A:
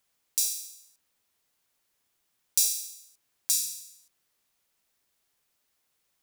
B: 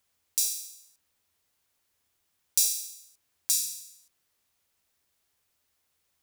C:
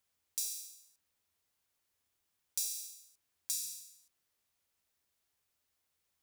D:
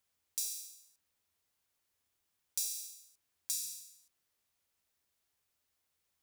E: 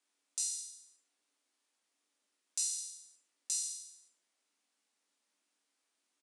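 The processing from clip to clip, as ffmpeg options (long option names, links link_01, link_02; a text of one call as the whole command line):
ffmpeg -i in.wav -af "equalizer=frequency=82:width_type=o:width=0.26:gain=14" out.wav
ffmpeg -i in.wav -af "acompressor=threshold=-26dB:ratio=2.5,asoftclip=type=tanh:threshold=-11dB,volume=-6.5dB" out.wav
ffmpeg -i in.wav -af anull out.wav
ffmpeg -i in.wav -filter_complex "[0:a]afreqshift=200,asplit=2[link_01][link_02];[link_02]aecho=0:1:20|46|79.8|123.7|180.9:0.631|0.398|0.251|0.158|0.1[link_03];[link_01][link_03]amix=inputs=2:normalize=0,aresample=22050,aresample=44100" out.wav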